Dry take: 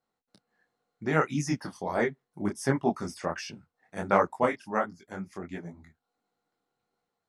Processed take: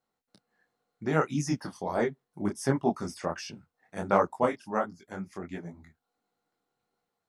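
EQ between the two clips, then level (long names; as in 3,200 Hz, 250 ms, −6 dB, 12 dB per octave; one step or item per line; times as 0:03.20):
dynamic equaliser 2,000 Hz, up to −6 dB, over −46 dBFS, Q 1.7
0.0 dB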